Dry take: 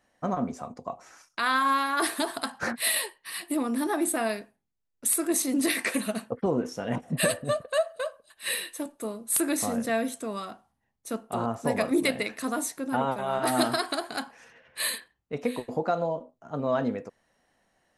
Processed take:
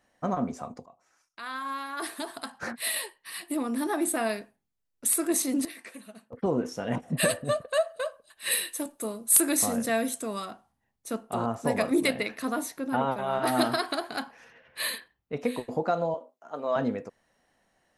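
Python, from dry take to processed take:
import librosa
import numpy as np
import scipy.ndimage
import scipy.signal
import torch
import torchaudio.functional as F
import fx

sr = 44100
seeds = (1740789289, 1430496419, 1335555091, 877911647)

y = fx.high_shelf(x, sr, hz=5900.0, db=8.0, at=(8.51, 10.46))
y = fx.peak_eq(y, sr, hz=8000.0, db=-8.0, octaves=0.77, at=(12.13, 15.4))
y = fx.highpass(y, sr, hz=450.0, slope=12, at=(16.14, 16.76))
y = fx.edit(y, sr, fx.fade_in_from(start_s=0.86, length_s=3.52, floor_db=-20.5),
    fx.fade_down_up(start_s=5.22, length_s=1.54, db=-17.0, fade_s=0.43, curve='log'), tone=tone)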